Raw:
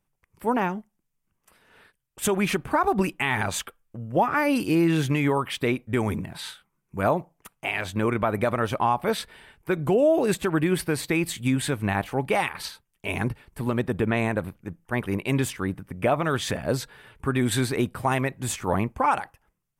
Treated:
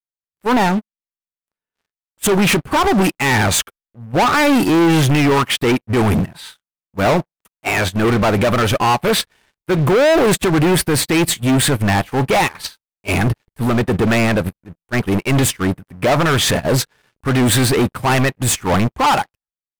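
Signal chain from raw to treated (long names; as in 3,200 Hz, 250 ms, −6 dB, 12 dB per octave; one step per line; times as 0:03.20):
transient designer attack −6 dB, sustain +1 dB
leveller curve on the samples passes 5
in parallel at 0 dB: output level in coarse steps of 18 dB
on the sum: expander for the loud parts 2.5 to 1, over −27 dBFS
level −2 dB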